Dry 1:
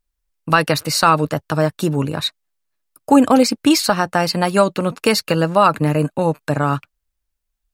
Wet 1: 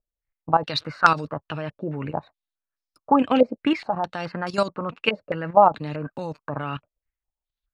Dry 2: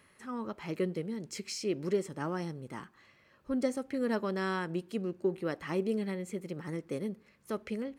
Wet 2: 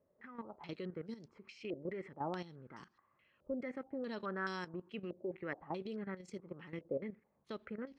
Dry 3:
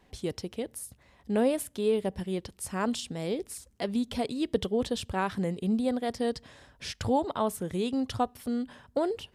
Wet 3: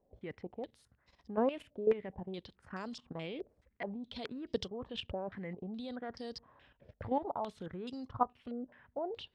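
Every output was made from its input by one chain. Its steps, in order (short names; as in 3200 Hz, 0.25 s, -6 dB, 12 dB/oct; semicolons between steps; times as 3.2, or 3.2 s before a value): level quantiser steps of 12 dB; stepped low-pass 4.7 Hz 590–5200 Hz; gain -6 dB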